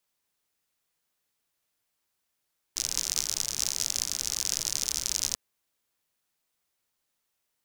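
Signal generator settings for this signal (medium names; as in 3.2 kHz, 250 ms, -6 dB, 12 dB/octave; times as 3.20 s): rain from filtered ticks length 2.59 s, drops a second 69, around 5.9 kHz, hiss -15.5 dB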